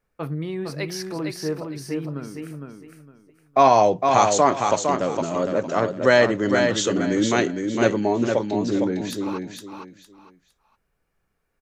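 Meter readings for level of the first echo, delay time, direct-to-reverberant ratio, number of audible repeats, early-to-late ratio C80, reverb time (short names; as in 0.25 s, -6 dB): -5.0 dB, 0.459 s, none, 3, none, none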